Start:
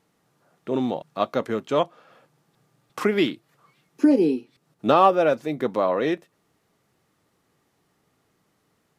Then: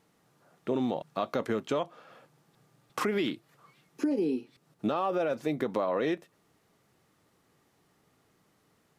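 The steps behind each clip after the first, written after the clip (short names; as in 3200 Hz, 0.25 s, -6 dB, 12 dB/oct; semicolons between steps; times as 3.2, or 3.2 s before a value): limiter -16 dBFS, peak gain reduction 10 dB; compressor, threshold -25 dBFS, peak gain reduction 6 dB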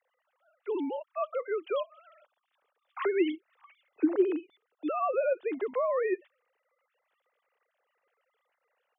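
sine-wave speech; high shelf 3000 Hz +9.5 dB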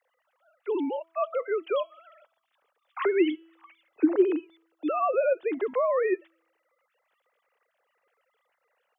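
resonator 330 Hz, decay 0.75 s, mix 40%; gain +8 dB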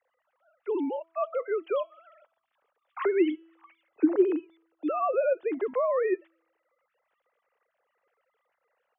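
air absorption 360 m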